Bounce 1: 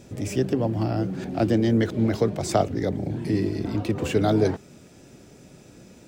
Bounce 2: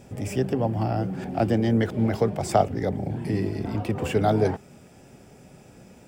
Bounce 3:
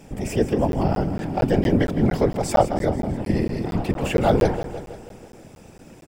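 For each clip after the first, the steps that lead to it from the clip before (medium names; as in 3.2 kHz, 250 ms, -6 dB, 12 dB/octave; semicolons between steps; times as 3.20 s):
graphic EQ with 31 bands 315 Hz -6 dB, 800 Hz +6 dB, 4 kHz -8 dB, 6.3 kHz -6 dB
whisper effect; on a send: feedback delay 162 ms, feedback 59%, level -12 dB; on the sum: crackling interface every 0.23 s, samples 512, zero, from 0.72 s; trim +3.5 dB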